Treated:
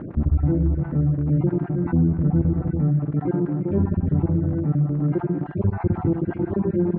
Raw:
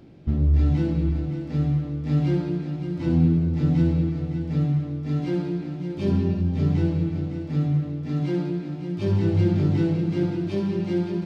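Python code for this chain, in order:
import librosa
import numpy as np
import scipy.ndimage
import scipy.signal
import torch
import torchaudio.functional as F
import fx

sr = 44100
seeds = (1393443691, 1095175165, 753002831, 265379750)

y = fx.spec_dropout(x, sr, seeds[0], share_pct=34)
y = y + 10.0 ** (-16.5 / 20.0) * np.pad(y, (int(123 * sr / 1000.0), 0))[:len(y)]
y = fx.dmg_crackle(y, sr, seeds[1], per_s=19.0, level_db=-23.0)
y = fx.stretch_vocoder(y, sr, factor=0.62)
y = scipy.signal.sosfilt(scipy.signal.butter(4, 1400.0, 'lowpass', fs=sr, output='sos'), y)
y = fx.env_flatten(y, sr, amount_pct=50)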